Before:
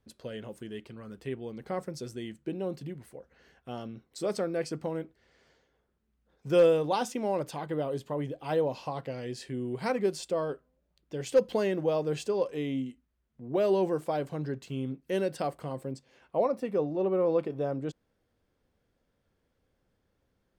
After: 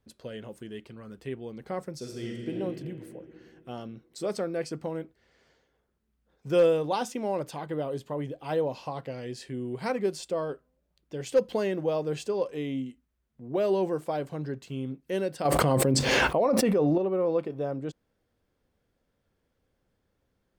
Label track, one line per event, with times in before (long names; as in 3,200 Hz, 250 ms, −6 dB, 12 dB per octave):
1.960000	2.560000	thrown reverb, RT60 2.8 s, DRR −1 dB
15.450000	16.980000	envelope flattener amount 100%